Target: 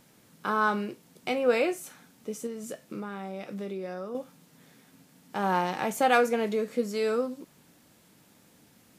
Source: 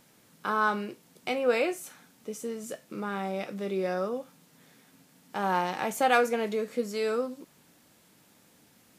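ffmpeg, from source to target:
-filter_complex "[0:a]lowshelf=f=350:g=4,asettb=1/sr,asplit=3[a][b][c];[a]atrim=end=2.464[d];[b]atrim=start=2.46:end=4.15,asetpts=PTS-STARTPTS,afade=t=in:d=0.004:c=qsin,afade=t=out:st=1.686:d=0.004:c=qsin,acompressor=threshold=-33dB:ratio=6[e];[c]atrim=start=4.146[f];[d][e]acrossfade=d=0.004:c1=hsin:c2=qsin[g];[g][f]acrossfade=d=0.004:c1=qsin:c2=hsin"

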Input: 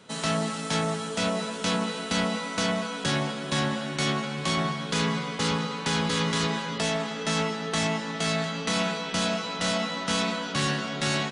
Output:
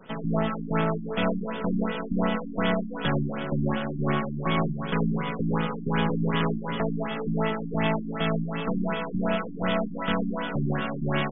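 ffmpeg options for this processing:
-af "aeval=exprs='if(lt(val(0),0),0.447*val(0),val(0))':c=same,acontrast=37,afftfilt=real='re*lt(b*sr/1024,330*pow(3700/330,0.5+0.5*sin(2*PI*2.7*pts/sr)))':imag='im*lt(b*sr/1024,330*pow(3700/330,0.5+0.5*sin(2*PI*2.7*pts/sr)))':win_size=1024:overlap=0.75"

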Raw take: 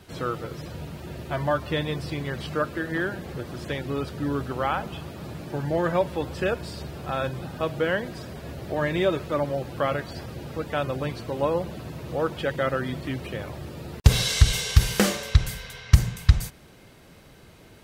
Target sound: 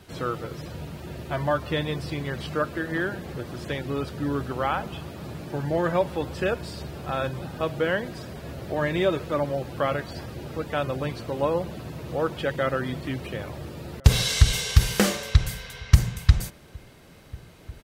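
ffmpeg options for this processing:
-filter_complex "[0:a]asplit=2[a][b];[b]adelay=1399,volume=-24dB,highshelf=f=4k:g=-31.5[c];[a][c]amix=inputs=2:normalize=0"

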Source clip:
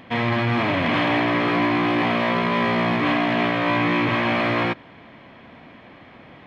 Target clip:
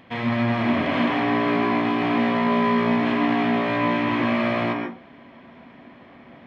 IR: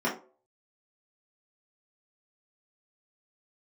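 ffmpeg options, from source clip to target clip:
-filter_complex "[0:a]asplit=2[a][b];[1:a]atrim=start_sample=2205,adelay=120[c];[b][c]afir=irnorm=-1:irlink=0,volume=-11.5dB[d];[a][d]amix=inputs=2:normalize=0,volume=-5.5dB"

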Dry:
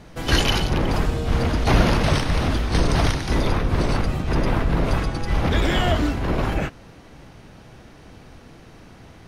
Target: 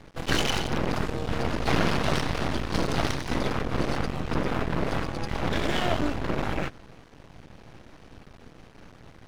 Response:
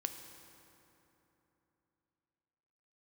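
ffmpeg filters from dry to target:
-filter_complex "[0:a]highshelf=f=6.9k:g=-7.5,acrossover=split=110|2300[a][b][c];[a]acompressor=threshold=-29dB:ratio=6[d];[d][b][c]amix=inputs=3:normalize=0,aeval=exprs='max(val(0),0)':c=same"

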